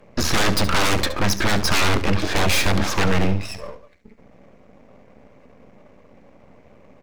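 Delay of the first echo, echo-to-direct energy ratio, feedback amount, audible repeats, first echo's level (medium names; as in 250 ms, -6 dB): 70 ms, -13.0 dB, 26%, 2, -13.5 dB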